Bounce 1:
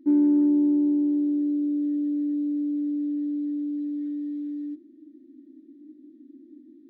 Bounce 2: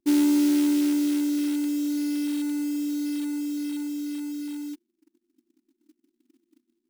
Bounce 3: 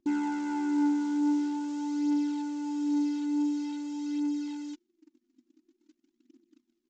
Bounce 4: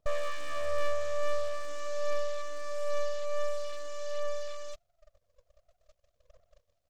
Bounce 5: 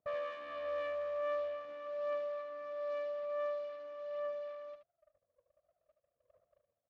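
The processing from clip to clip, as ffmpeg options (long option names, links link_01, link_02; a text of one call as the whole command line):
ffmpeg -i in.wav -af "anlmdn=25.1,acrusher=bits=6:mode=log:mix=0:aa=0.000001,tiltshelf=frequency=740:gain=-6,volume=3.5dB" out.wav
ffmpeg -i in.wav -af "aresample=16000,asoftclip=type=tanh:threshold=-28dB,aresample=44100,aphaser=in_gain=1:out_gain=1:delay=4.3:decay=0.46:speed=0.47:type=triangular" out.wav
ffmpeg -i in.wav -af "aeval=exprs='abs(val(0))':channel_layout=same,volume=2dB" out.wav
ffmpeg -i in.wav -af "adynamicsmooth=sensitivity=6:basefreq=1700,highpass=160,lowpass=3300,aecho=1:1:75:0.376,volume=-5dB" out.wav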